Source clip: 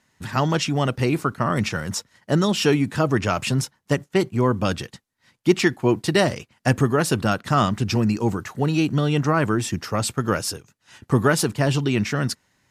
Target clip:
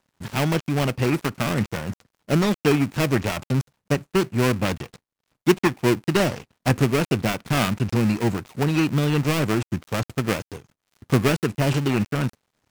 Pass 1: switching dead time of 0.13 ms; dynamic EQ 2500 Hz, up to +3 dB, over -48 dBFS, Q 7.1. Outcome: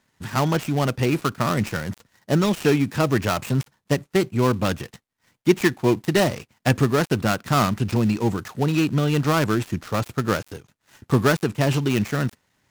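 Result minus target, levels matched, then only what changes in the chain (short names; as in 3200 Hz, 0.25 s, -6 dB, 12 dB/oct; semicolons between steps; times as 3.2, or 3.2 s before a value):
switching dead time: distortion -6 dB
change: switching dead time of 0.35 ms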